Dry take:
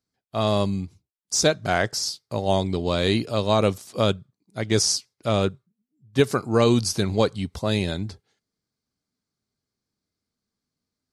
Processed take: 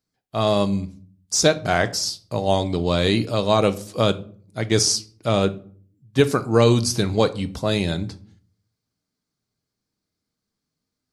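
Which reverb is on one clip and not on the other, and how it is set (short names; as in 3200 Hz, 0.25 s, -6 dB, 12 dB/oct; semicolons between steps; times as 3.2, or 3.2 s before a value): shoebox room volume 440 m³, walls furnished, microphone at 0.53 m; gain +2 dB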